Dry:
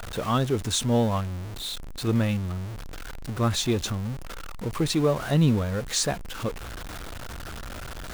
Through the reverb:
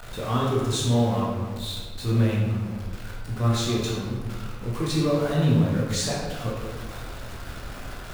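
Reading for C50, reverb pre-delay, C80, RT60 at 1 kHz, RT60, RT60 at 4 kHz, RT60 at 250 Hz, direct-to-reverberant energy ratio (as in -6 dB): 0.5 dB, 12 ms, 2.5 dB, 1.5 s, 1.6 s, 0.90 s, 1.8 s, -5.0 dB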